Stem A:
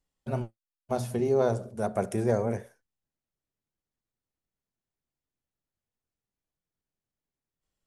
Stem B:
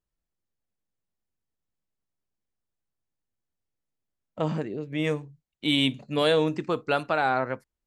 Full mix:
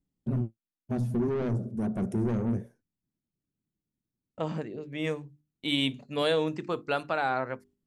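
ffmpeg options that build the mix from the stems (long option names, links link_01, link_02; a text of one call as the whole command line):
ffmpeg -i stem1.wav -i stem2.wav -filter_complex "[0:a]equalizer=frequency=190:width=0.41:gain=13.5,asoftclip=type=tanh:threshold=-19dB,lowshelf=frequency=400:width_type=q:width=1.5:gain=6,volume=-4.5dB[link_01];[1:a]agate=range=-33dB:threshold=-42dB:ratio=3:detection=peak,bandreject=frequency=50:width_type=h:width=6,bandreject=frequency=100:width_type=h:width=6,bandreject=frequency=150:width_type=h:width=6,bandreject=frequency=200:width_type=h:width=6,bandreject=frequency=250:width_type=h:width=6,bandreject=frequency=300:width_type=h:width=6,bandreject=frequency=350:width_type=h:width=6,bandreject=frequency=400:width_type=h:width=6,volume=-4dB,asplit=2[link_02][link_03];[link_03]apad=whole_len=346870[link_04];[link_01][link_04]sidechaingate=range=-6dB:threshold=-57dB:ratio=16:detection=peak[link_05];[link_05][link_02]amix=inputs=2:normalize=0" out.wav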